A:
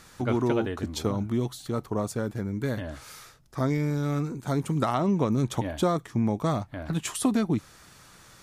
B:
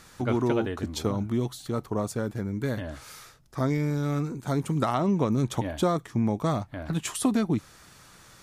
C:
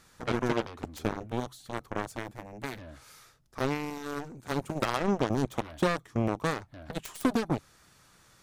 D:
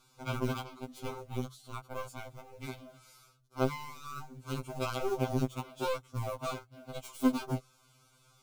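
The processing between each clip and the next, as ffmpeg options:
-af anull
-af "aeval=exprs='0.237*(cos(1*acos(clip(val(0)/0.237,-1,1)))-cos(1*PI/2))+0.0188*(cos(3*acos(clip(val(0)/0.237,-1,1)))-cos(3*PI/2))+0.0422*(cos(7*acos(clip(val(0)/0.237,-1,1)))-cos(7*PI/2))+0.00376*(cos(8*acos(clip(val(0)/0.237,-1,1)))-cos(8*PI/2))':c=same,volume=-1.5dB"
-af "asuperstop=centerf=1800:order=8:qfactor=3.7,acrusher=bits=5:mode=log:mix=0:aa=0.000001,afftfilt=real='re*2.45*eq(mod(b,6),0)':imag='im*2.45*eq(mod(b,6),0)':win_size=2048:overlap=0.75,volume=-2.5dB"

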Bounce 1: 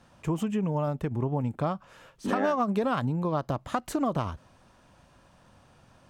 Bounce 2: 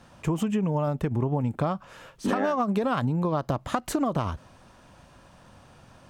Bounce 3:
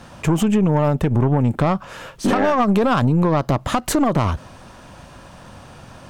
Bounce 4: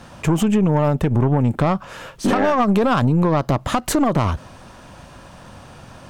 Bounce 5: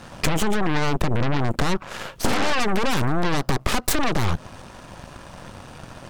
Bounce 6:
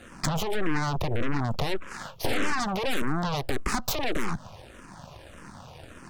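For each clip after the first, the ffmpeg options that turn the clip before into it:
-af "acompressor=threshold=-27dB:ratio=6,volume=5.5dB"
-filter_complex "[0:a]asplit=2[a][b];[b]alimiter=limit=-21.5dB:level=0:latency=1:release=28,volume=-1dB[c];[a][c]amix=inputs=2:normalize=0,aeval=exprs='(tanh(7.08*val(0)+0.35)-tanh(0.35))/7.08':c=same,volume=7dB"
-af anull
-af "aeval=exprs='0.422*(cos(1*acos(clip(val(0)/0.422,-1,1)))-cos(1*PI/2))+0.168*(cos(8*acos(clip(val(0)/0.422,-1,1)))-cos(8*PI/2))':c=same,acompressor=threshold=-16dB:ratio=6"
-filter_complex "[0:a]asplit=2[a][b];[b]afreqshift=-1.7[c];[a][c]amix=inputs=2:normalize=1,volume=-2.5dB"

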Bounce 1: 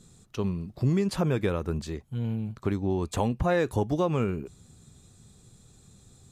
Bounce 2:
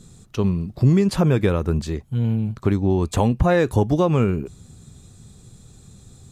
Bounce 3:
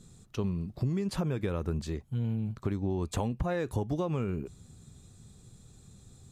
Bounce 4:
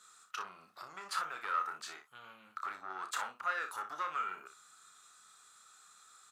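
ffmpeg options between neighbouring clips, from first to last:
-af "lowshelf=f=230:g=4.5,volume=6dB"
-af "acompressor=threshold=-19dB:ratio=6,volume=-8dB"
-filter_complex "[0:a]asoftclip=type=tanh:threshold=-29dB,highpass=f=1.3k:t=q:w=7.4,asplit=2[a][b];[b]aecho=0:1:32|60:0.398|0.282[c];[a][c]amix=inputs=2:normalize=0"

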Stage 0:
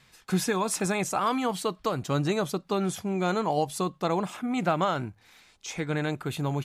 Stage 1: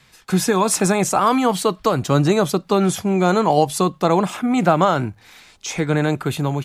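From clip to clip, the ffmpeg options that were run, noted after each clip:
-filter_complex "[0:a]acrossover=split=310|1600|4400[a][b][c][d];[c]alimiter=level_in=12.5dB:limit=-24dB:level=0:latency=1:release=27,volume=-12.5dB[e];[a][b][e][d]amix=inputs=4:normalize=0,dynaudnorm=f=120:g=7:m=4.5dB,volume=6dB"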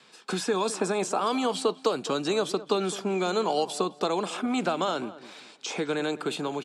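-filter_complex "[0:a]acrossover=split=1100|2300[a][b][c];[a]acompressor=threshold=-27dB:ratio=4[d];[b]acompressor=threshold=-38dB:ratio=4[e];[c]acompressor=threshold=-31dB:ratio=4[f];[d][e][f]amix=inputs=3:normalize=0,highpass=f=210:w=0.5412,highpass=f=210:w=1.3066,equalizer=f=430:t=q:w=4:g=5,equalizer=f=2k:t=q:w=4:g=-8,equalizer=f=6.4k:t=q:w=4:g=-6,lowpass=f=8.5k:w=0.5412,lowpass=f=8.5k:w=1.3066,asplit=2[g][h];[h]adelay=209,lowpass=f=1.8k:p=1,volume=-15.5dB,asplit=2[i][j];[j]adelay=209,lowpass=f=1.8k:p=1,volume=0.32,asplit=2[k][l];[l]adelay=209,lowpass=f=1.8k:p=1,volume=0.32[m];[g][i][k][m]amix=inputs=4:normalize=0"

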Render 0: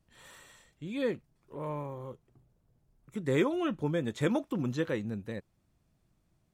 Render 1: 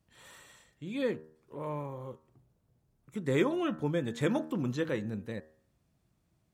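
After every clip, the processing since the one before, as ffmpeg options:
-af "highpass=49,bandreject=f=78.11:t=h:w=4,bandreject=f=156.22:t=h:w=4,bandreject=f=234.33:t=h:w=4,bandreject=f=312.44:t=h:w=4,bandreject=f=390.55:t=h:w=4,bandreject=f=468.66:t=h:w=4,bandreject=f=546.77:t=h:w=4,bandreject=f=624.88:t=h:w=4,bandreject=f=702.99:t=h:w=4,bandreject=f=781.1:t=h:w=4,bandreject=f=859.21:t=h:w=4,bandreject=f=937.32:t=h:w=4,bandreject=f=1.01543k:t=h:w=4,bandreject=f=1.09354k:t=h:w=4,bandreject=f=1.17165k:t=h:w=4,bandreject=f=1.24976k:t=h:w=4,bandreject=f=1.32787k:t=h:w=4,bandreject=f=1.40598k:t=h:w=4,bandreject=f=1.48409k:t=h:w=4,bandreject=f=1.5622k:t=h:w=4,bandreject=f=1.64031k:t=h:w=4,bandreject=f=1.71842k:t=h:w=4,bandreject=f=1.79653k:t=h:w=4,bandreject=f=1.87464k:t=h:w=4"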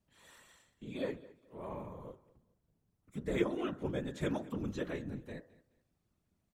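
-af "afftfilt=real='hypot(re,im)*cos(2*PI*random(0))':imag='hypot(re,im)*sin(2*PI*random(1))':win_size=512:overlap=0.75,aecho=1:1:212|424:0.0944|0.0255"

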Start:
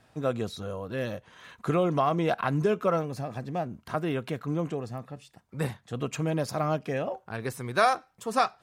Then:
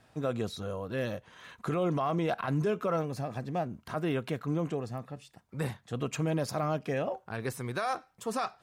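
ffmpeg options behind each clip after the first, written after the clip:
-af "alimiter=limit=-21dB:level=0:latency=1:release=22,volume=-1dB"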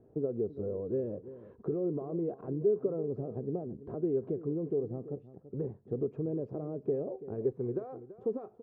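-af "acompressor=threshold=-36dB:ratio=6,lowpass=f=410:t=q:w=5,aecho=1:1:334:0.178"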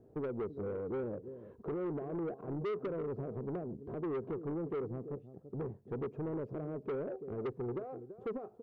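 -af "asoftclip=type=tanh:threshold=-33dB"

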